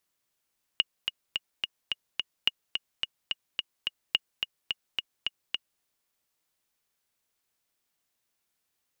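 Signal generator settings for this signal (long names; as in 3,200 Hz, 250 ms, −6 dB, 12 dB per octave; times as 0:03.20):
click track 215 BPM, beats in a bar 6, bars 3, 2,870 Hz, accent 6 dB −9 dBFS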